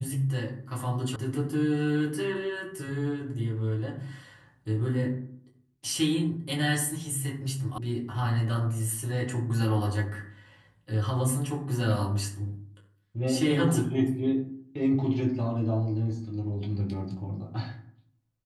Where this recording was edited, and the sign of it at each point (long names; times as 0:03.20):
0:01.16: cut off before it has died away
0:07.78: cut off before it has died away